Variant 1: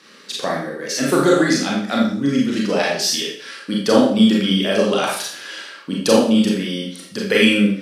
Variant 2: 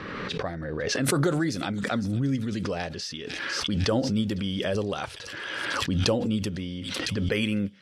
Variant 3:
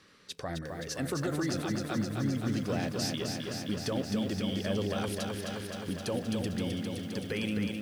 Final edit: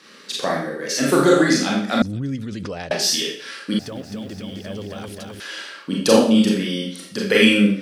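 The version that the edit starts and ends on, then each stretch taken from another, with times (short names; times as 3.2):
1
2.02–2.91 from 2
3.79–5.4 from 3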